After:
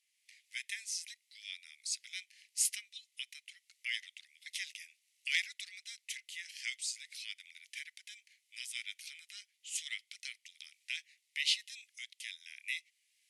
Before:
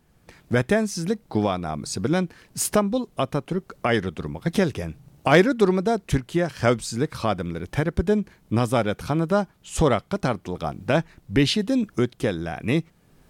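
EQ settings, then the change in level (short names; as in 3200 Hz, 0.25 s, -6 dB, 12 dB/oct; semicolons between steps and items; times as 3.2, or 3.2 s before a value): Chebyshev high-pass 2000 Hz, order 6; brick-wall FIR low-pass 12000 Hz; -5.0 dB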